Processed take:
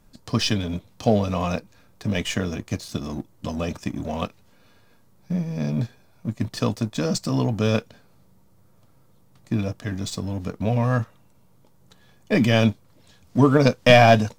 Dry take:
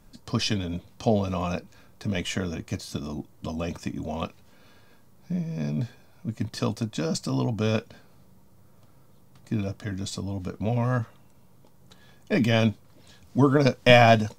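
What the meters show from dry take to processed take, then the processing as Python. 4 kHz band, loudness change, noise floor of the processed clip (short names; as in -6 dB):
+2.5 dB, +3.5 dB, -56 dBFS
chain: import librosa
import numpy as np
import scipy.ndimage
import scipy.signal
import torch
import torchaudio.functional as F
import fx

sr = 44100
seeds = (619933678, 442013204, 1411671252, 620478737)

y = fx.leveller(x, sr, passes=1)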